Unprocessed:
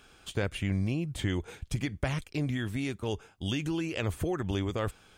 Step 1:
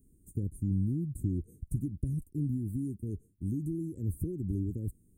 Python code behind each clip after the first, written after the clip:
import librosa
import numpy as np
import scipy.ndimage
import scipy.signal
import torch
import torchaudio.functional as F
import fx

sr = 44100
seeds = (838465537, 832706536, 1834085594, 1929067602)

y = scipy.signal.sosfilt(scipy.signal.cheby2(4, 50, [710.0, 4800.0], 'bandstop', fs=sr, output='sos'), x)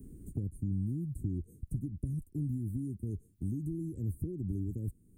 y = fx.low_shelf(x, sr, hz=230.0, db=3.0)
y = fx.band_squash(y, sr, depth_pct=70)
y = y * 10.0 ** (-5.0 / 20.0)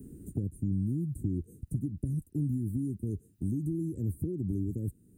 y = fx.notch_comb(x, sr, f0_hz=1100.0)
y = y * 10.0 ** (5.5 / 20.0)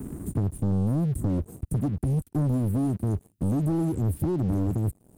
y = fx.leveller(x, sr, passes=3)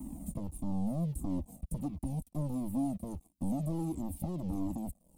y = fx.fixed_phaser(x, sr, hz=410.0, stages=6)
y = fx.comb_cascade(y, sr, direction='falling', hz=1.5)